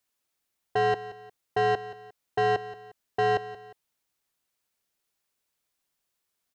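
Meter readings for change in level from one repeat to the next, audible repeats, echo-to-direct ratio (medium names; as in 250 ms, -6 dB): -8.0 dB, 2, -15.0 dB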